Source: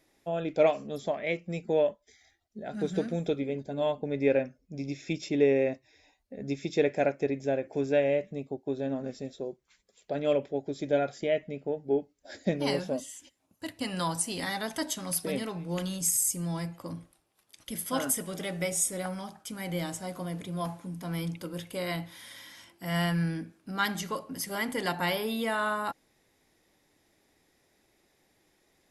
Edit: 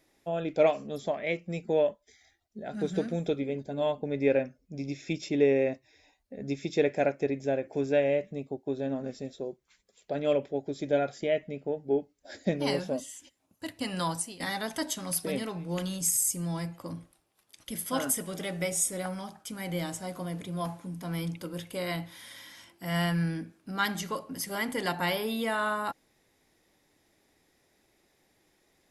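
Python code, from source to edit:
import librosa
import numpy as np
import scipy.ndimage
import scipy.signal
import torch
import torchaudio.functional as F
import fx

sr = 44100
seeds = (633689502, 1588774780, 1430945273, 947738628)

y = fx.edit(x, sr, fx.fade_out_to(start_s=14.11, length_s=0.29, floor_db=-18.5), tone=tone)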